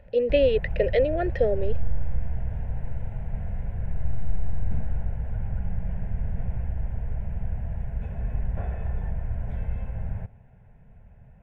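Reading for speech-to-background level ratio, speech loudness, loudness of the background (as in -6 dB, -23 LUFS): 8.5 dB, -24.5 LUFS, -33.0 LUFS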